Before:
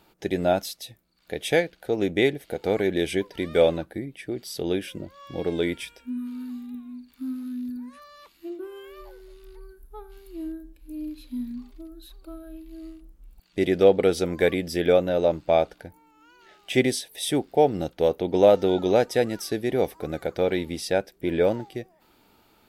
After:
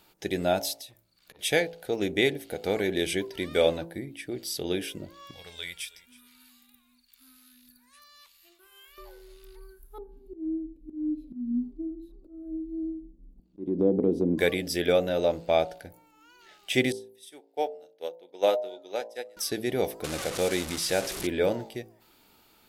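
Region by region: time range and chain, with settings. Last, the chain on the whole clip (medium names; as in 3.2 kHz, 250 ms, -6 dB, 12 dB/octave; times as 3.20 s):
0.76–1.39 s: compression 16:1, threshold -41 dBFS + transformer saturation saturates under 1.6 kHz
5.31–8.98 s: amplifier tone stack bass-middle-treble 10-0-10 + feedback delay 320 ms, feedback 28%, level -21 dB
9.98–14.38 s: FFT filter 100 Hz 0 dB, 200 Hz +12 dB, 290 Hz +14 dB, 1.7 kHz -27 dB + compression 2:1, threshold -18 dBFS + slow attack 279 ms
16.92–19.37 s: high-pass 400 Hz + doubling 36 ms -12.5 dB + upward expansion 2.5:1, over -31 dBFS
20.04–21.27 s: one-bit delta coder 64 kbps, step -28.5 dBFS + tape noise reduction on one side only encoder only
whole clip: treble shelf 2.5 kHz +8 dB; de-hum 55.84 Hz, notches 18; trim -3.5 dB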